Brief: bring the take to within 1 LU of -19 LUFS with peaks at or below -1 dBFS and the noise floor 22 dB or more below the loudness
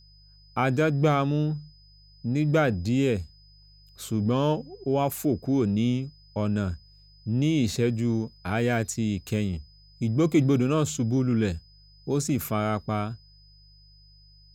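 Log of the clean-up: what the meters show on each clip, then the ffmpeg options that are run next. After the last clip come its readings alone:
hum 50 Hz; harmonics up to 150 Hz; hum level -45 dBFS; steady tone 5000 Hz; tone level -56 dBFS; loudness -26.0 LUFS; peak -10.0 dBFS; loudness target -19.0 LUFS
-> -af "bandreject=f=50:t=h:w=4,bandreject=f=100:t=h:w=4,bandreject=f=150:t=h:w=4"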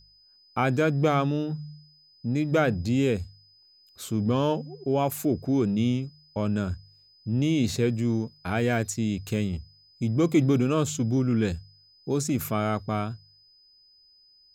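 hum none; steady tone 5000 Hz; tone level -56 dBFS
-> -af "bandreject=f=5k:w=30"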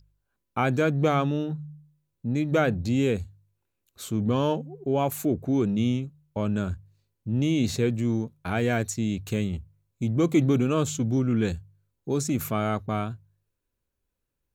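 steady tone none; loudness -26.5 LUFS; peak -9.5 dBFS; loudness target -19.0 LUFS
-> -af "volume=7.5dB"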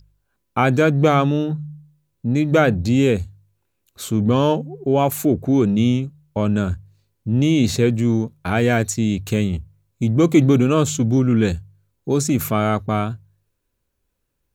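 loudness -19.0 LUFS; peak -2.0 dBFS; noise floor -73 dBFS

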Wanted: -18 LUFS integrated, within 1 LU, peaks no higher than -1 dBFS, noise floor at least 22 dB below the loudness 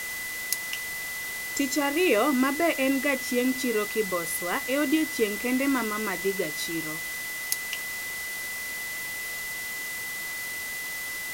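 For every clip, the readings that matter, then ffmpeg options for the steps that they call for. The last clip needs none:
steady tone 2000 Hz; tone level -33 dBFS; noise floor -34 dBFS; noise floor target -50 dBFS; loudness -27.5 LUFS; peak -7.0 dBFS; loudness target -18.0 LUFS
-> -af "bandreject=f=2k:w=30"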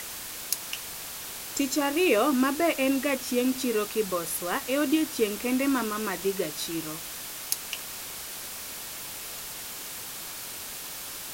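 steady tone none; noise floor -39 dBFS; noise floor target -51 dBFS
-> -af "afftdn=nr=12:nf=-39"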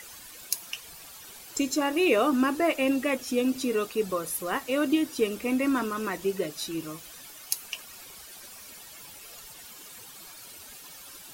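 noise floor -47 dBFS; noise floor target -50 dBFS
-> -af "afftdn=nr=6:nf=-47"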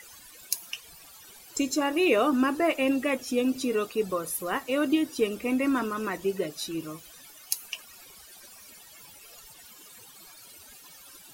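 noise floor -51 dBFS; loudness -28.0 LUFS; peak -7.5 dBFS; loudness target -18.0 LUFS
-> -af "volume=10dB,alimiter=limit=-1dB:level=0:latency=1"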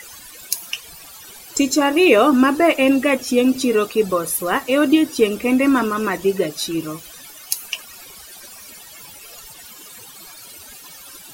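loudness -18.0 LUFS; peak -1.0 dBFS; noise floor -41 dBFS

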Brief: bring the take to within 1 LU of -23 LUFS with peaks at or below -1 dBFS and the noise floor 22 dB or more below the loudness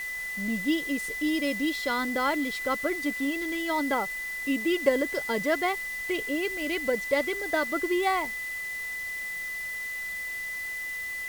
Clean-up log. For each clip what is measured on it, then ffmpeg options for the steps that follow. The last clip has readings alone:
steady tone 2000 Hz; tone level -32 dBFS; noise floor -35 dBFS; noise floor target -51 dBFS; loudness -28.5 LUFS; peak -9.5 dBFS; loudness target -23.0 LUFS
-> -af "bandreject=f=2k:w=30"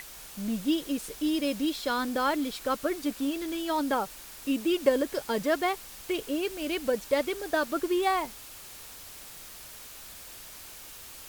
steady tone none; noise floor -46 dBFS; noise floor target -52 dBFS
-> -af "afftdn=nr=6:nf=-46"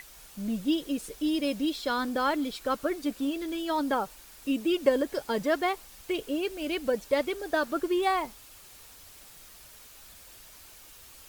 noise floor -51 dBFS; noise floor target -52 dBFS
-> -af "afftdn=nr=6:nf=-51"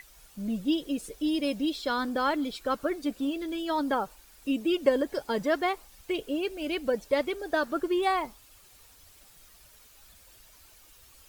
noise floor -56 dBFS; loudness -29.5 LUFS; peak -10.5 dBFS; loudness target -23.0 LUFS
-> -af "volume=6.5dB"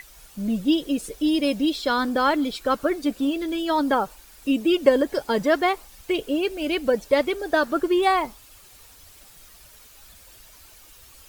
loudness -23.0 LUFS; peak -4.0 dBFS; noise floor -50 dBFS

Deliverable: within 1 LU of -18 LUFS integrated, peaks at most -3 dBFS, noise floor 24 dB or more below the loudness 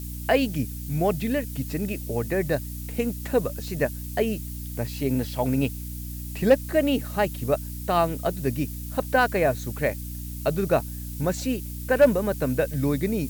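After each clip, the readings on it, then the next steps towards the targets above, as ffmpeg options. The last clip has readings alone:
hum 60 Hz; harmonics up to 300 Hz; hum level -32 dBFS; noise floor -35 dBFS; noise floor target -50 dBFS; loudness -26.0 LUFS; peak -8.0 dBFS; loudness target -18.0 LUFS
-> -af "bandreject=f=60:t=h:w=4,bandreject=f=120:t=h:w=4,bandreject=f=180:t=h:w=4,bandreject=f=240:t=h:w=4,bandreject=f=300:t=h:w=4"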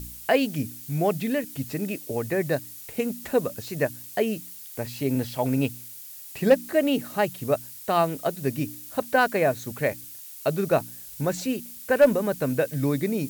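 hum none; noise floor -42 dBFS; noise floor target -50 dBFS
-> -af "afftdn=nr=8:nf=-42"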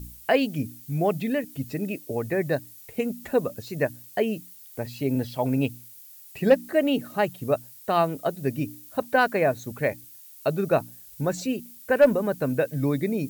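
noise floor -47 dBFS; noise floor target -50 dBFS
-> -af "afftdn=nr=6:nf=-47"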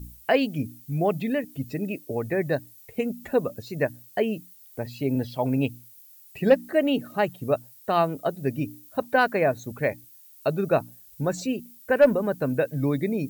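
noise floor -51 dBFS; loudness -26.0 LUFS; peak -7.5 dBFS; loudness target -18.0 LUFS
-> -af "volume=8dB,alimiter=limit=-3dB:level=0:latency=1"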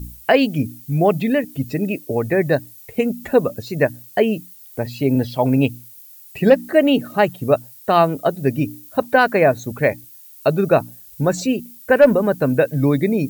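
loudness -18.5 LUFS; peak -3.0 dBFS; noise floor -43 dBFS

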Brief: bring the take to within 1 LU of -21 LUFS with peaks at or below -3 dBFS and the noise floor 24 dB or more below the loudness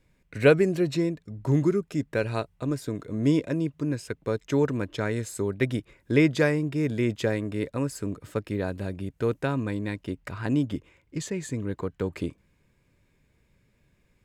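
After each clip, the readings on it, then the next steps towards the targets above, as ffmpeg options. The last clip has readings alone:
loudness -27.5 LUFS; peak -7.5 dBFS; loudness target -21.0 LUFS
-> -af "volume=6.5dB,alimiter=limit=-3dB:level=0:latency=1"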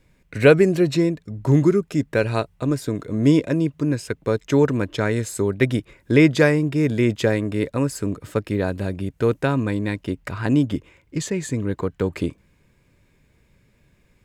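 loudness -21.5 LUFS; peak -3.0 dBFS; noise floor -61 dBFS

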